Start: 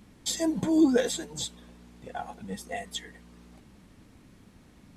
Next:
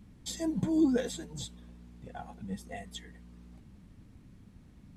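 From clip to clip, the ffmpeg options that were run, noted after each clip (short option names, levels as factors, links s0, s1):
-af "bass=f=250:g=11,treble=f=4000:g=-1,volume=0.398"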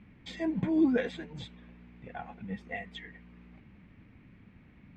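-af "lowpass=f=2300:t=q:w=3.1,lowshelf=f=67:g=-9.5,volume=1.12"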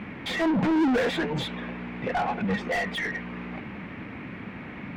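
-filter_complex "[0:a]asplit=2[s0][s1];[s1]highpass=f=720:p=1,volume=56.2,asoftclip=type=tanh:threshold=0.158[s2];[s0][s2]amix=inputs=2:normalize=0,lowpass=f=1400:p=1,volume=0.501"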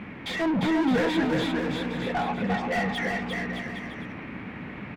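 -af "aecho=1:1:350|612.5|809.4|957|1068:0.631|0.398|0.251|0.158|0.1,volume=0.841"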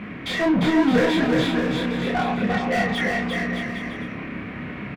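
-filter_complex "[0:a]asuperstop=centerf=860:order=4:qfactor=7.8,asplit=2[s0][s1];[s1]adelay=29,volume=0.668[s2];[s0][s2]amix=inputs=2:normalize=0,volume=1.5"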